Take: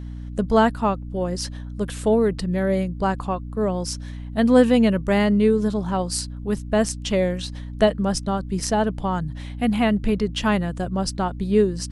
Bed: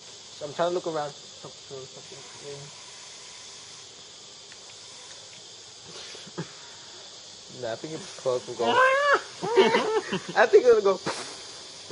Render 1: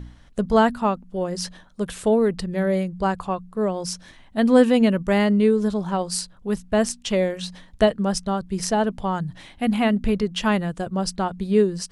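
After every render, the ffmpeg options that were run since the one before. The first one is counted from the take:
-af "bandreject=f=60:t=h:w=4,bandreject=f=120:t=h:w=4,bandreject=f=180:t=h:w=4,bandreject=f=240:t=h:w=4,bandreject=f=300:t=h:w=4"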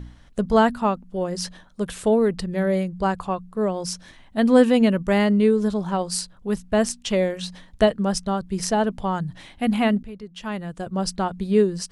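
-filter_complex "[0:a]asplit=2[a][b];[a]atrim=end=10.03,asetpts=PTS-STARTPTS,afade=t=out:st=10.026:d=0.004:c=hsin:silence=0.149624[c];[b]atrim=start=10.03,asetpts=PTS-STARTPTS,afade=t=in:d=0.99:c=qua:silence=0.149624[d];[c][d]concat=n=2:v=0:a=1"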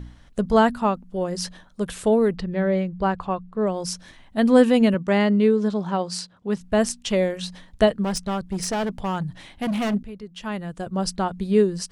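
-filter_complex "[0:a]asettb=1/sr,asplit=3[a][b][c];[a]atrim=end=2.364[d];[b]atrim=start=2.36:end=3.67,asetpts=PTS-STARTPTS,afade=t=in:d=0.004:c=qsin,afade=t=out:st=1.306:d=0.004:c=qsin,lowpass=3.8k[e];[c]atrim=start=3.666[f];[d][e]acrossfade=d=0.004:c1=hsin:c2=qsin[g];[g][f]acrossfade=d=0.004:c1=qsin:c2=hsin,asettb=1/sr,asplit=3[h][i][j];[h]atrim=end=4.944[k];[i]atrim=start=4.94:end=6.61,asetpts=PTS-STARTPTS,afade=t=in:d=0.004:c=qsin,afade=t=out:st=1.666:d=0.004:c=qsin,highpass=120,lowpass=6.1k[l];[j]atrim=start=6.606[m];[k][l]acrossfade=d=0.004:c1=hsin:c2=qsin[n];[n][m]acrossfade=d=0.004:c1=qsin:c2=hsin,asplit=3[o][p][q];[o]afade=t=out:st=8.03:d=0.02[r];[p]volume=21.5dB,asoftclip=hard,volume=-21.5dB,afade=t=in:st=8.03:d=0.02,afade=t=out:st=9.93:d=0.02[s];[q]afade=t=in:st=9.93:d=0.02[t];[r][s][t]amix=inputs=3:normalize=0"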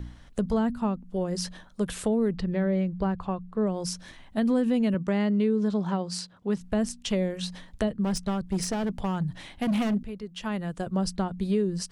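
-filter_complex "[0:a]acrossover=split=310[a][b];[a]alimiter=limit=-21.5dB:level=0:latency=1[c];[b]acompressor=threshold=-30dB:ratio=6[d];[c][d]amix=inputs=2:normalize=0"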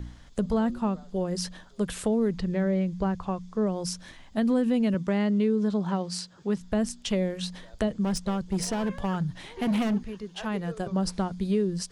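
-filter_complex "[1:a]volume=-23dB[a];[0:a][a]amix=inputs=2:normalize=0"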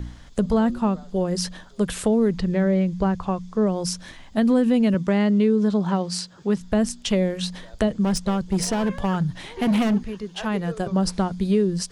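-af "volume=5.5dB"

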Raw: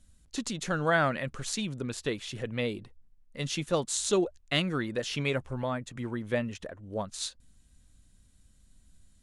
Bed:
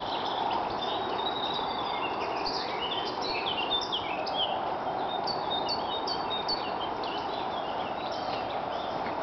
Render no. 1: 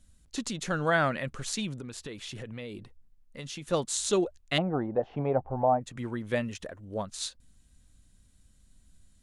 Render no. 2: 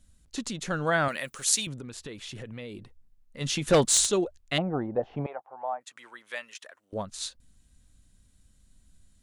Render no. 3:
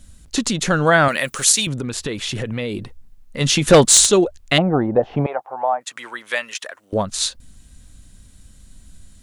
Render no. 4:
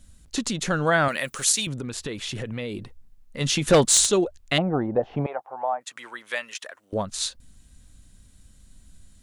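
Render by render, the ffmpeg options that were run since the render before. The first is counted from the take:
-filter_complex "[0:a]asettb=1/sr,asplit=3[a][b][c];[a]atrim=end=1.754[d];[b]atrim=start=1.75:end=3.66,asetpts=PTS-STARTPTS,afade=t=in:d=0.004:c=qsin,afade=t=out:st=1.906:d=0.004:c=qsin,acompressor=threshold=-36dB:ratio=6:attack=3.2:release=140:knee=1:detection=peak[e];[c]atrim=start=3.656[f];[d][e]acrossfade=d=0.004:c1=hsin:c2=qsin[g];[g][f]acrossfade=d=0.004:c1=qsin:c2=hsin,asettb=1/sr,asplit=3[h][i][j];[h]atrim=end=4.584[k];[i]atrim=start=4.58:end=5.81,asetpts=PTS-STARTPTS,afade=t=in:d=0.004:c=qsin,afade=t=out:st=1.226:d=0.004:c=qsin,lowpass=f=770:t=q:w=7.5[l];[j]atrim=start=5.806[m];[k][l]acrossfade=d=0.004:c1=hsin:c2=qsin[n];[n][m]acrossfade=d=0.004:c1=qsin:c2=hsin,asettb=1/sr,asplit=3[o][p][q];[o]atrim=end=6.314[r];[p]atrim=start=6.31:end=6.85,asetpts=PTS-STARTPTS,afade=t=in:d=0.004:c=qsin,afade=t=out:st=0.536:d=0.004:c=qsin,highshelf=f=4.4k:g=5.5[s];[q]atrim=start=6.846[t];[r][s]acrossfade=d=0.004:c1=hsin:c2=qsin[u];[u][t]acrossfade=d=0.004:c1=qsin:c2=hsin"
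-filter_complex "[0:a]asettb=1/sr,asplit=3[a][b][c];[a]atrim=end=1.084[d];[b]atrim=start=1.08:end=1.67,asetpts=PTS-STARTPTS,afade=t=in:d=0.004:c=qsin,afade=t=out:st=0.586:d=0.004:c=qsin,aemphasis=mode=production:type=riaa[e];[c]atrim=start=1.666[f];[d][e]acrossfade=d=0.004:c1=hsin:c2=qsin[g];[g][f]acrossfade=d=0.004:c1=qsin:c2=hsin,asplit=3[h][i][j];[h]afade=t=out:st=3.4:d=0.02[k];[i]aeval=exprs='0.2*sin(PI/2*2.24*val(0)/0.2)':c=same,afade=t=in:st=3.4:d=0.02,afade=t=out:st=4.05:d=0.02[l];[j]afade=t=in:st=4.05:d=0.02[m];[k][l][m]amix=inputs=3:normalize=0,asettb=1/sr,asplit=3[n][o][p];[n]atrim=end=5.264[q];[o]atrim=start=5.26:end=6.93,asetpts=PTS-STARTPTS,afade=t=in:d=0.004:c=qsin,afade=t=out:st=1.666:d=0.004:c=qsin,highpass=1.1k[r];[p]atrim=start=6.926[s];[q][r]acrossfade=d=0.004:c1=hsin:c2=qsin[t];[t][s]acrossfade=d=0.004:c1=qsin:c2=hsin"
-filter_complex "[0:a]asplit=2[a][b];[b]acompressor=threshold=-34dB:ratio=6,volume=0.5dB[c];[a][c]amix=inputs=2:normalize=0,alimiter=level_in=9dB:limit=-1dB:release=50:level=0:latency=1"
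-af "volume=-6.5dB"

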